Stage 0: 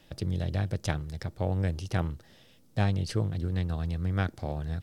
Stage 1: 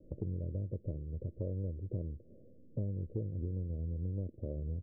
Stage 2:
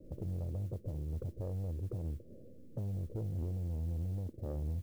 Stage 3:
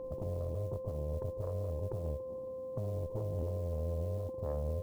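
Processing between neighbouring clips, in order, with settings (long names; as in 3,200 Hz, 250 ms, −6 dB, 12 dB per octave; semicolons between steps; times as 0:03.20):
Butterworth low-pass 570 Hz 72 dB per octave; parametric band 150 Hz −5.5 dB 0.83 octaves; downward compressor 3 to 1, threshold −42 dBFS, peak gain reduction 13.5 dB; level +4.5 dB
brickwall limiter −31.5 dBFS, peak gain reduction 6.5 dB; noise that follows the level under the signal 32 dB; soft clipping −35.5 dBFS, distortion −16 dB; level +4.5 dB
steady tone 520 Hz −40 dBFS; harmonic generator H 2 −9 dB, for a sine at −28.5 dBFS; one half of a high-frequency compander encoder only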